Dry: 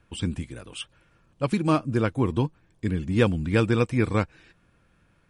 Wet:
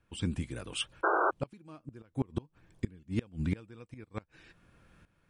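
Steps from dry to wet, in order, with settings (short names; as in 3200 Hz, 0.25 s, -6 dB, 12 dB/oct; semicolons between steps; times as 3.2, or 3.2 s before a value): tremolo saw up 0.99 Hz, depth 80%; flipped gate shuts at -21 dBFS, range -29 dB; painted sound noise, 1.03–1.31, 310–1600 Hz -30 dBFS; gain +3 dB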